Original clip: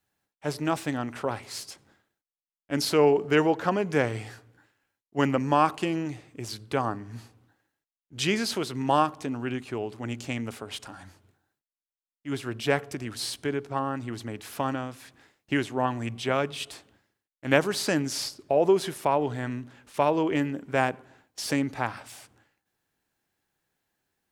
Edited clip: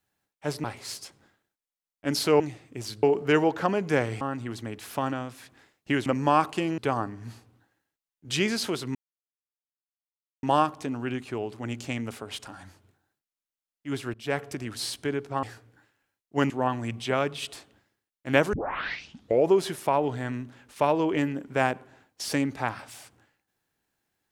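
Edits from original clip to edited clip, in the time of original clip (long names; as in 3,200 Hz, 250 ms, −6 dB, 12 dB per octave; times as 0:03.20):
0:00.64–0:01.30: remove
0:04.24–0:05.31: swap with 0:13.83–0:15.68
0:06.03–0:06.66: move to 0:03.06
0:08.83: splice in silence 1.48 s
0:12.54–0:12.86: fade in, from −17.5 dB
0:17.71: tape start 0.97 s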